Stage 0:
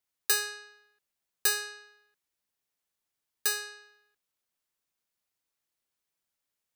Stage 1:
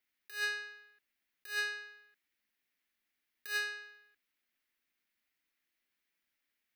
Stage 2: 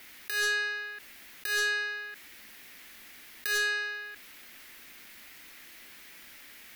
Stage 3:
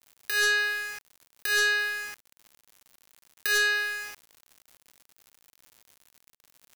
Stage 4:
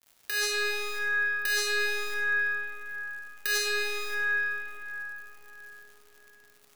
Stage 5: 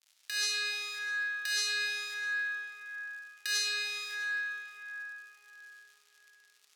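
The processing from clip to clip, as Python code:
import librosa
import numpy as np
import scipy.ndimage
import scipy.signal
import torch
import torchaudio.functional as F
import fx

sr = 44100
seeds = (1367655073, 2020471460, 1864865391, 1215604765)

y1 = fx.graphic_eq(x, sr, hz=(125, 250, 500, 1000, 2000, 8000), db=(-11, 7, -4, -5, 10, -8))
y1 = fx.over_compress(y1, sr, threshold_db=-32.0, ratio=-0.5)
y1 = y1 * librosa.db_to_amplitude(-3.5)
y2 = fx.fold_sine(y1, sr, drive_db=7, ceiling_db=-25.0)
y2 = fx.env_flatten(y2, sr, amount_pct=50)
y3 = np.where(np.abs(y2) >= 10.0 ** (-41.0 / 20.0), y2, 0.0)
y3 = y3 * librosa.db_to_amplitude(4.5)
y4 = fx.rev_freeverb(y3, sr, rt60_s=4.9, hf_ratio=0.4, predelay_ms=15, drr_db=-3.0)
y4 = y4 * librosa.db_to_amplitude(-2.5)
y5 = fx.bandpass_q(y4, sr, hz=4500.0, q=0.76)
y5 = y5 + 10.0 ** (-20.5 / 20.0) * np.pad(y5, (int(651 * sr / 1000.0), 0))[:len(y5)]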